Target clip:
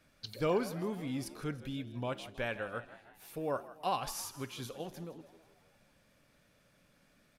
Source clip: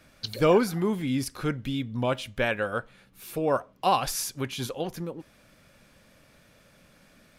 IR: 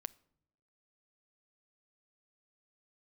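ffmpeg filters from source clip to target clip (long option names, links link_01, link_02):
-filter_complex "[0:a]asplit=6[link_01][link_02][link_03][link_04][link_05][link_06];[link_02]adelay=161,afreqshift=76,volume=-16dB[link_07];[link_03]adelay=322,afreqshift=152,volume=-21.2dB[link_08];[link_04]adelay=483,afreqshift=228,volume=-26.4dB[link_09];[link_05]adelay=644,afreqshift=304,volume=-31.6dB[link_10];[link_06]adelay=805,afreqshift=380,volume=-36.8dB[link_11];[link_01][link_07][link_08][link_09][link_10][link_11]amix=inputs=6:normalize=0[link_12];[1:a]atrim=start_sample=2205[link_13];[link_12][link_13]afir=irnorm=-1:irlink=0,volume=-7dB"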